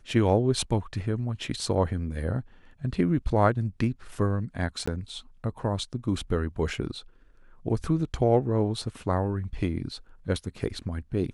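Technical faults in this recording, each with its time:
4.86–4.88 gap 15 ms

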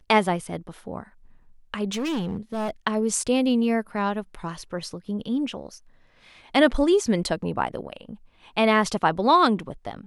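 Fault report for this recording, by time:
1.91–2.71 clipped -24 dBFS

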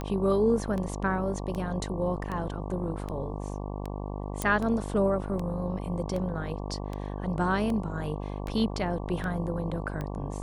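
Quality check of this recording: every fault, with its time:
buzz 50 Hz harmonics 23 -35 dBFS
tick 78 rpm -22 dBFS
4.42 pop

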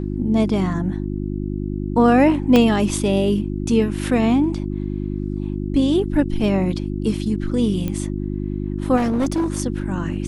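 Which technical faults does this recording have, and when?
hum 50 Hz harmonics 7 -25 dBFS
2.56 pop -4 dBFS
7.88 pop -13 dBFS
8.96–9.56 clipped -16 dBFS

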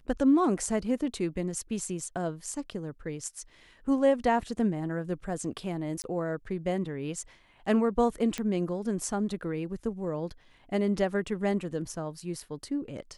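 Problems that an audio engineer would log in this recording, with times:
6.02–6.04 gap 19 ms
8.38 pop -18 dBFS

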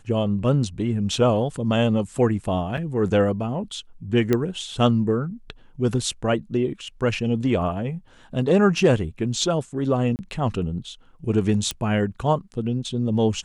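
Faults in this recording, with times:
2.77–2.78 gap 5.8 ms
4.33 pop -8 dBFS
10.16–10.19 gap 29 ms
11.71 pop -10 dBFS

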